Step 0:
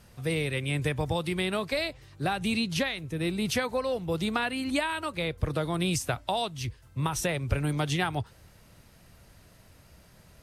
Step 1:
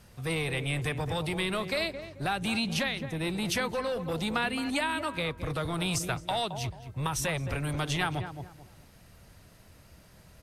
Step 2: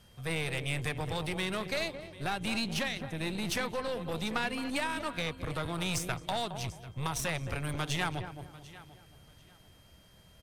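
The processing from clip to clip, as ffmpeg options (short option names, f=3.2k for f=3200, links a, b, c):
-filter_complex "[0:a]asplit=2[a][b];[b]adelay=218,lowpass=f=1.4k:p=1,volume=-10dB,asplit=2[c][d];[d]adelay=218,lowpass=f=1.4k:p=1,volume=0.31,asplit=2[e][f];[f]adelay=218,lowpass=f=1.4k:p=1,volume=0.31[g];[a][c][e][g]amix=inputs=4:normalize=0,acrossover=split=930[h][i];[h]volume=29.5dB,asoftclip=hard,volume=-29.5dB[j];[j][i]amix=inputs=2:normalize=0"
-af "aecho=1:1:743|1486:0.133|0.032,aeval=exprs='val(0)+0.001*sin(2*PI*3200*n/s)':c=same,aeval=exprs='0.168*(cos(1*acos(clip(val(0)/0.168,-1,1)))-cos(1*PI/2))+0.00668*(cos(5*acos(clip(val(0)/0.168,-1,1)))-cos(5*PI/2))+0.0168*(cos(6*acos(clip(val(0)/0.168,-1,1)))-cos(6*PI/2))+0.0075*(cos(7*acos(clip(val(0)/0.168,-1,1)))-cos(7*PI/2))':c=same,volume=-3.5dB"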